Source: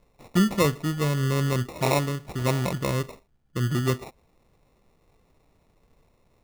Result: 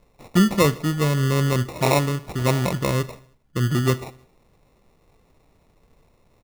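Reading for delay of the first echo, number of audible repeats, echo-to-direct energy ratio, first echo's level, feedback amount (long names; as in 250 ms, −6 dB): 78 ms, 3, −21.5 dB, −23.0 dB, 58%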